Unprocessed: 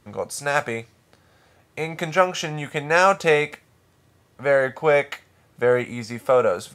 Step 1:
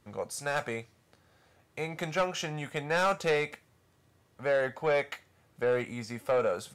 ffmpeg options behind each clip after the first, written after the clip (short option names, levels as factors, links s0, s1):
-af "asoftclip=type=tanh:threshold=0.211,volume=0.447"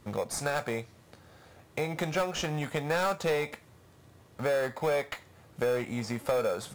-filter_complex "[0:a]asplit=2[s0][s1];[s1]acrusher=samples=15:mix=1:aa=0.000001,volume=0.398[s2];[s0][s2]amix=inputs=2:normalize=0,acompressor=threshold=0.0126:ratio=2.5,volume=2.24"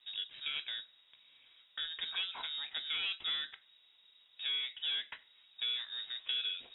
-af "lowpass=f=3300:t=q:w=0.5098,lowpass=f=3300:t=q:w=0.6013,lowpass=f=3300:t=q:w=0.9,lowpass=f=3300:t=q:w=2.563,afreqshift=-3900,volume=0.376"